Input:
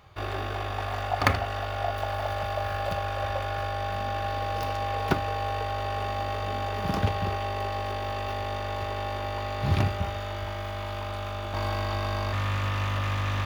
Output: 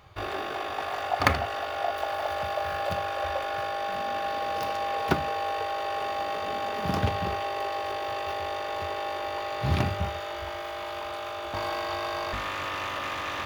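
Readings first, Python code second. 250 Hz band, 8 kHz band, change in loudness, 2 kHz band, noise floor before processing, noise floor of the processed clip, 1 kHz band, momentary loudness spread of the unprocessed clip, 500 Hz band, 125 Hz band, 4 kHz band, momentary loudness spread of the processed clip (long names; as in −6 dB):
−0.5 dB, +1.0 dB, −0.5 dB, +1.0 dB, −33 dBFS, −35 dBFS, +1.0 dB, 6 LU, +1.0 dB, −6.5 dB, +1.0 dB, 6 LU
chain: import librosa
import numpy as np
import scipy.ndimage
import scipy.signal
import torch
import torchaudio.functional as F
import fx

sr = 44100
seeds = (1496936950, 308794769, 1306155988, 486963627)

y = fx.hum_notches(x, sr, base_hz=50, count=5)
y = F.gain(torch.from_numpy(y), 1.0).numpy()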